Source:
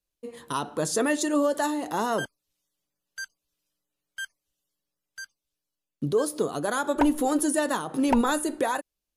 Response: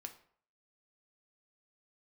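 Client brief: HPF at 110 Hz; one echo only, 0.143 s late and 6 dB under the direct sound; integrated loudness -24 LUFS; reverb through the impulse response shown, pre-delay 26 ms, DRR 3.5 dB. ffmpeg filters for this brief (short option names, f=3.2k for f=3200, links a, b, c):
-filter_complex "[0:a]highpass=110,aecho=1:1:143:0.501,asplit=2[a][b];[1:a]atrim=start_sample=2205,adelay=26[c];[b][c]afir=irnorm=-1:irlink=0,volume=1dB[d];[a][d]amix=inputs=2:normalize=0"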